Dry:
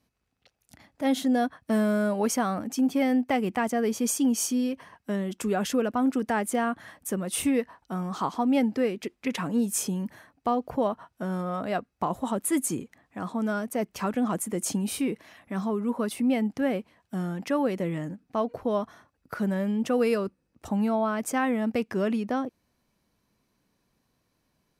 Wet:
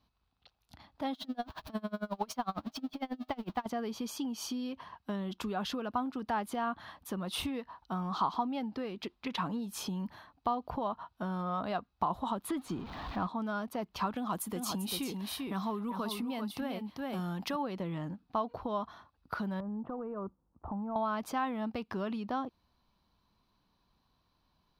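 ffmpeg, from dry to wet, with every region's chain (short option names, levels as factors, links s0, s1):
-filter_complex "[0:a]asettb=1/sr,asplit=3[s0][s1][s2];[s0]atrim=end=1.134[s3];[s1]atrim=start=1.13:end=3.66,asetpts=PTS-STARTPTS,afade=t=in:d=0.004:c=qsin,afade=t=out:st=2.526:d=0.004:c=qsin,aeval=exprs='val(0)+0.5*0.0188*sgn(val(0))':c=same,aeval=exprs='val(0)+0.00355*sin(2*PI*630*n/s)':c=same,aeval=exprs='val(0)*pow(10,-31*(0.5-0.5*cos(2*PI*11*n/s))/20)':c=same[s4];[s2]atrim=start=3.656[s5];[s3][s4]acrossfade=d=0.004:c1=hsin:c2=qsin[s6];[s6][s5]acrossfade=d=0.004:c1=qsin:c2=hsin,asettb=1/sr,asplit=3[s7][s8][s9];[s7]atrim=end=12.494[s10];[s8]atrim=start=12.49:end=13.27,asetpts=PTS-STARTPTS,afade=t=in:d=0.004:c=qsin,afade=t=out:st=0.776:d=0.004:c=qsin,aeval=exprs='val(0)+0.5*0.01*sgn(val(0))':c=same,lowpass=f=2400:p=1,acontrast=49[s11];[s9]atrim=start=13.266[s12];[s10][s11]acrossfade=d=0.004:c1=hsin:c2=qsin[s13];[s13][s12]acrossfade=d=0.004:c1=qsin:c2=hsin,asettb=1/sr,asplit=3[s14][s15][s16];[s14]atrim=end=14.164[s17];[s15]atrim=start=14.16:end=17.56,asetpts=PTS-STARTPTS,afade=t=in:d=0.004:c=qsin,afade=t=out:st=3.396:d=0.004:c=qsin,aemphasis=mode=production:type=50kf,aecho=1:1:393:0.473,atrim=end_sample=149940[s18];[s16]atrim=start=17.556[s19];[s17][s18]acrossfade=d=0.004:c1=hsin:c2=qsin[s20];[s20][s19]acrossfade=d=0.004:c1=qsin:c2=hsin,asettb=1/sr,asplit=3[s21][s22][s23];[s21]atrim=end=19.604[s24];[s22]atrim=start=19.6:end=20.96,asetpts=PTS-STARTPTS,afade=t=in:d=0.004:c=qsin,afade=t=out:st=1.356:d=0.004:c=qsin,lowpass=f=1200:w=0.5412,lowpass=f=1200:w=1.3066,acompressor=threshold=0.0282:ratio=5:attack=3.2:release=140:knee=1:detection=peak[s25];[s23]atrim=start=20.956[s26];[s24][s25]acrossfade=d=0.004:c1=hsin:c2=qsin[s27];[s27][s26]acrossfade=d=0.004:c1=qsin:c2=hsin,bass=f=250:g=5,treble=f=4000:g=-7,acompressor=threshold=0.0447:ratio=6,equalizer=f=125:t=o:w=1:g=-7,equalizer=f=250:t=o:w=1:g=-5,equalizer=f=500:t=o:w=1:g=-7,equalizer=f=1000:t=o:w=1:g=7,equalizer=f=2000:t=o:w=1:g=-9,equalizer=f=4000:t=o:w=1:g=11,equalizer=f=8000:t=o:w=1:g=-12"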